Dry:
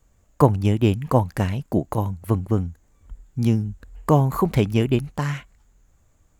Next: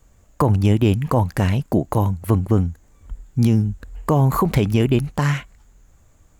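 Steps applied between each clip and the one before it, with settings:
brickwall limiter −14.5 dBFS, peak gain reduction 11.5 dB
level +6.5 dB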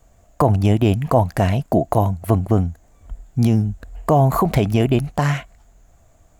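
parametric band 680 Hz +13 dB 0.31 octaves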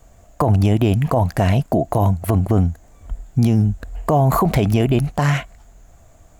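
brickwall limiter −13 dBFS, peak gain reduction 9.5 dB
level +5 dB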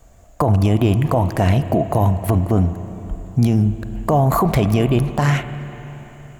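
convolution reverb RT60 3.8 s, pre-delay 33 ms, DRR 11 dB

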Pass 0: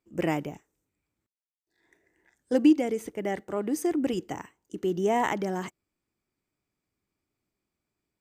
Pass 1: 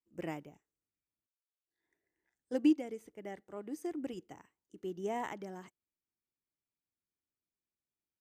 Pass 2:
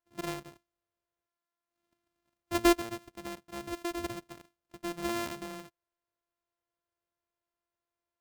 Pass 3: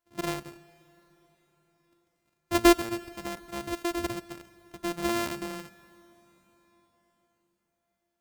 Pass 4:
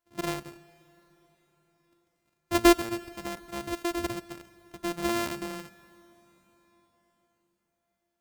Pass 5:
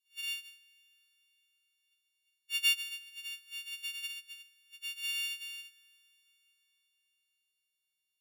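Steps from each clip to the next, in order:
expander for the loud parts 1.5 to 1, over −35 dBFS; level −7.5 dB
samples sorted by size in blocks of 128 samples; level +3 dB
dense smooth reverb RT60 4.9 s, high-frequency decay 0.9×, DRR 19 dB; level +5 dB
no processing that can be heard
every partial snapped to a pitch grid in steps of 4 semitones; four-pole ladder high-pass 2,800 Hz, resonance 85%; level −1 dB

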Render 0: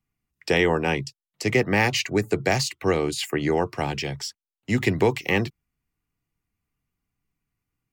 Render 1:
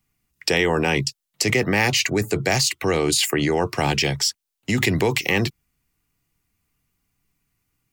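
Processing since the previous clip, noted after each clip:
high-shelf EQ 3,000 Hz +7.5 dB
in parallel at +2 dB: compressor whose output falls as the input rises −26 dBFS, ratio −1
on the sum: level −3 dB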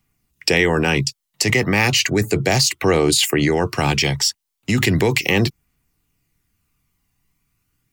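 phase shifter 0.35 Hz, delay 1.1 ms, feedback 26%
level +2.5 dB

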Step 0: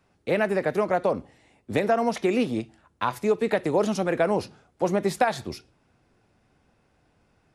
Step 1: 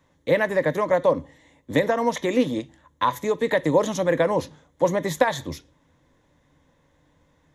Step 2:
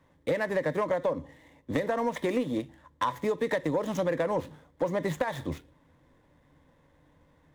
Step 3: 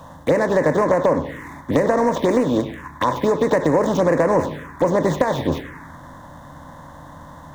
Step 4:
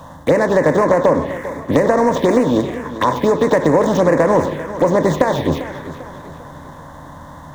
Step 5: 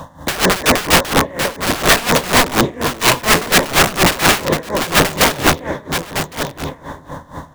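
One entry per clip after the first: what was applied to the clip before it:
EQ curve with evenly spaced ripples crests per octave 1.1, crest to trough 11 dB; level +1.5 dB
running median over 9 samples; downward compressor 10 to 1, threshold −23 dBFS, peak gain reduction 11 dB; soft clipping −16.5 dBFS, distortion −22 dB
compressor on every frequency bin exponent 0.6; feedback echo with a band-pass in the loop 99 ms, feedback 72%, band-pass 1,500 Hz, level −9 dB; phaser swept by the level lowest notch 330 Hz, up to 3,400 Hz, full sweep at −21 dBFS; level +8.5 dB
feedback echo with a swinging delay time 398 ms, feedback 45%, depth 55 cents, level −14 dB; level +3.5 dB
wrap-around overflow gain 11.5 dB; on a send: single-tap delay 1,109 ms −9 dB; on the sum: tremolo with a sine in dB 4.2 Hz, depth 18 dB; level +8 dB

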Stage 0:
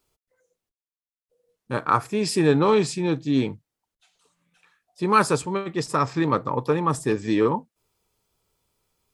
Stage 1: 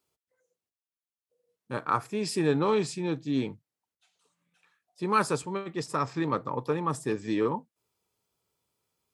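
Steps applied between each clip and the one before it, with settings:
high-pass filter 93 Hz
level −6.5 dB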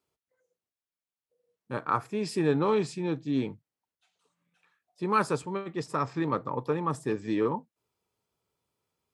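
high-shelf EQ 3,800 Hz −7 dB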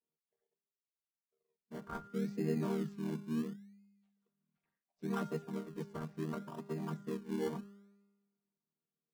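channel vocoder with a chord as carrier major triad, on D#3
tuned comb filter 200 Hz, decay 1.2 s, mix 70%
in parallel at −7 dB: sample-and-hold swept by an LFO 27×, swing 60% 0.71 Hz
on the sum: level −2 dB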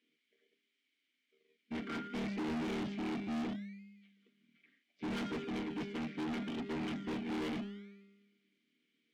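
tape wow and flutter 16 cents
formant filter i
mid-hump overdrive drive 37 dB, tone 3,800 Hz, clips at −35.5 dBFS
level +4.5 dB

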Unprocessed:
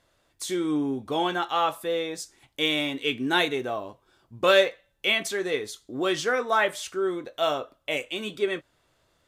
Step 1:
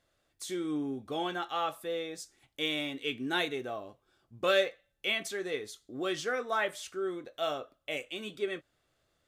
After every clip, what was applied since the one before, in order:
notch filter 960 Hz, Q 6.8
level −7.5 dB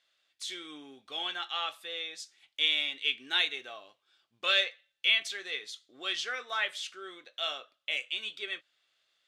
resonant band-pass 3,300 Hz, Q 1.4
level +8 dB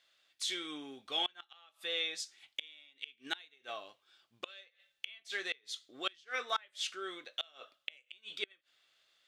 gate with flip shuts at −24 dBFS, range −30 dB
level +2.5 dB

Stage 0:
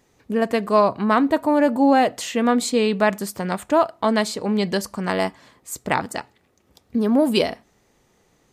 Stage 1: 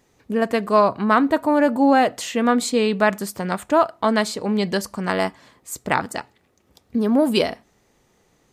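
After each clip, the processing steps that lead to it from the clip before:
dynamic equaliser 1,400 Hz, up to +4 dB, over −33 dBFS, Q 2.4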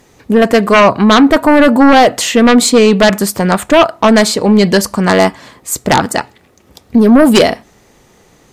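sine wavefolder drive 8 dB, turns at −4 dBFS
level +2.5 dB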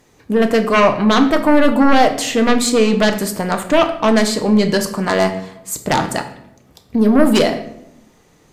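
rectangular room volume 210 cubic metres, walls mixed, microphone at 0.48 metres
level −7 dB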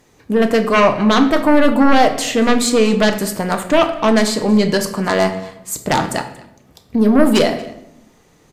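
single-tap delay 232 ms −22 dB

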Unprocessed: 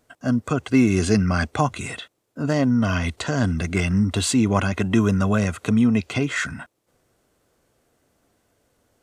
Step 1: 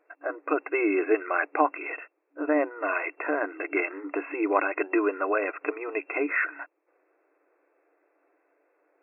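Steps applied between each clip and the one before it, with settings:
brick-wall band-pass 280–2,700 Hz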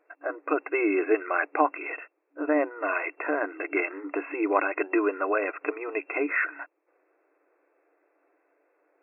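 no processing that can be heard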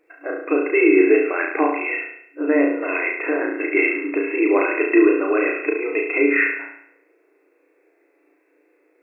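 flat-topped bell 950 Hz −10 dB
on a send: flutter between parallel walls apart 6 metres, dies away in 0.7 s
on the sum: de-essing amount 70%
level +8 dB

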